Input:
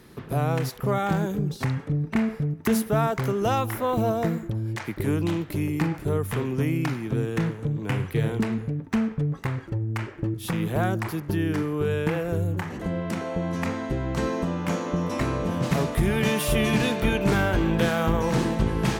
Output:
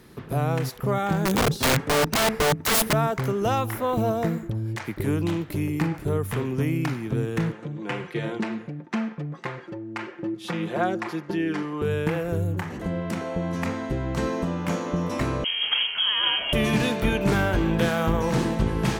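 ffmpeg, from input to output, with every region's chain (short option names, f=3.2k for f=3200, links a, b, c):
-filter_complex "[0:a]asettb=1/sr,asplit=3[a][b][c];[a]atrim=end=1.254[d];[b]atrim=start=1.25:end=2.93,asetpts=PTS-STARTPTS,afade=t=in:d=0.004:c=qsin,afade=t=out:st=1.676:d=0.004:c=qsin,aeval=exprs='(mod(13.3*val(0)+1,2)-1)/13.3':c=same,acontrast=66[e];[c]atrim=start=2.926[f];[d][e]acrossfade=d=0.004:c1=hsin:c2=qsin[g];[g][f]acrossfade=d=0.004:c1=qsin:c2=hsin,asettb=1/sr,asplit=3[h][i][j];[h]atrim=end=7.524[k];[i]atrim=start=7.52:end=11.82,asetpts=PTS-STARTPTS,afade=t=in:d=0.004:c=qsin,afade=t=out:st=4.296:d=0.004:c=qsin,highpass=260,lowpass=5.7k,aecho=1:1:5.7:0.61,atrim=end_sample=189630[l];[j]atrim=start=11.816[m];[k][l]acrossfade=d=0.004:c1=hsin:c2=qsin[n];[n][m]acrossfade=d=0.004:c1=qsin:c2=hsin,asettb=1/sr,asplit=3[o][p][q];[o]atrim=end=15.444[r];[p]atrim=start=15.44:end=16.53,asetpts=PTS-STARTPTS,afade=t=in:d=0.004:c=qsin,afade=t=out:st=1.086:d=0.004:c=qsin,highpass=120,lowpass=f=2.9k:t=q:w=0.5098,lowpass=f=2.9k:t=q:w=0.6013,lowpass=f=2.9k:t=q:w=0.9,lowpass=f=2.9k:t=q:w=2.563,afreqshift=-3400[s];[q]atrim=start=16.526[t];[r][s]acrossfade=d=0.004:c1=hsin:c2=qsin[u];[u][t]acrossfade=d=0.004:c1=qsin:c2=hsin"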